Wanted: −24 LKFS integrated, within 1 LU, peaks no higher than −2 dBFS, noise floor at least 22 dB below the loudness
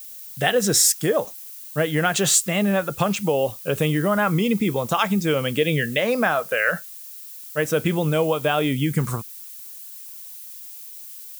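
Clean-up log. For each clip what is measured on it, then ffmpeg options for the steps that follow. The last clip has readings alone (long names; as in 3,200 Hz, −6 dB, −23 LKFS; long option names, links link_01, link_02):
background noise floor −39 dBFS; target noise floor −44 dBFS; integrated loudness −21.5 LKFS; sample peak −4.5 dBFS; target loudness −24.0 LKFS
→ -af "afftdn=noise_reduction=6:noise_floor=-39"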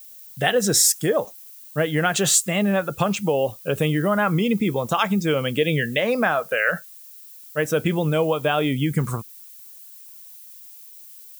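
background noise floor −44 dBFS; integrated loudness −21.5 LKFS; sample peak −4.5 dBFS; target loudness −24.0 LKFS
→ -af "volume=-2.5dB"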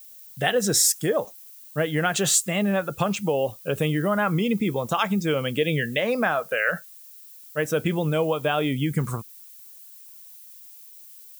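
integrated loudness −24.0 LKFS; sample peak −7.0 dBFS; background noise floor −46 dBFS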